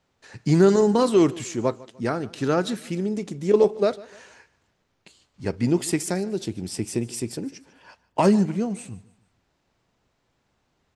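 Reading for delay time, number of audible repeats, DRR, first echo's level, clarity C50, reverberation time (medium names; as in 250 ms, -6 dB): 149 ms, 2, no reverb, -21.0 dB, no reverb, no reverb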